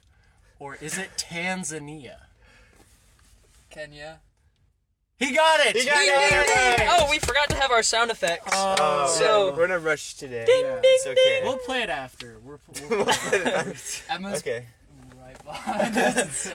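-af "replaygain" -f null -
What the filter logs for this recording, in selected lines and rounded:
track_gain = +1.9 dB
track_peak = 0.276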